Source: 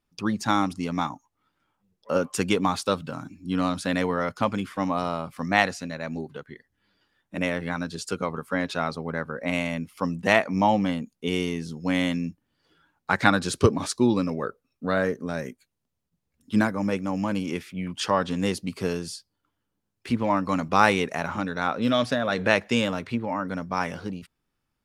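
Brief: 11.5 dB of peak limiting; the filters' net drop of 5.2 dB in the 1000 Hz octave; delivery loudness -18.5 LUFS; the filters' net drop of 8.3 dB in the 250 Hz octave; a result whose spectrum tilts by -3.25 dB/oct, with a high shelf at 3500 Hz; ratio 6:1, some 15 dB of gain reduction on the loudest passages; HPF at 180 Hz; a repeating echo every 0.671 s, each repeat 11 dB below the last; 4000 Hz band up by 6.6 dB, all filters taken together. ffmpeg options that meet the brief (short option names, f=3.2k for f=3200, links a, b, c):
-af "highpass=180,equalizer=f=250:t=o:g=-8.5,equalizer=f=1k:t=o:g=-7.5,highshelf=f=3.5k:g=7.5,equalizer=f=4k:t=o:g=4,acompressor=threshold=-31dB:ratio=6,alimiter=level_in=1.5dB:limit=-24dB:level=0:latency=1,volume=-1.5dB,aecho=1:1:671|1342|2013:0.282|0.0789|0.0221,volume=20dB"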